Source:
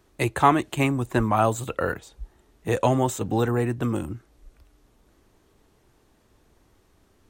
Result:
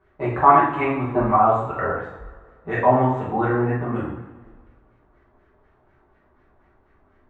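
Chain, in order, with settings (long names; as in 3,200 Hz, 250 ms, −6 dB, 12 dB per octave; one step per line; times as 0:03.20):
auto-filter low-pass sine 4.1 Hz 900–1,900 Hz
coupled-rooms reverb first 0.62 s, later 1.9 s, from −16 dB, DRR −9 dB
level −8 dB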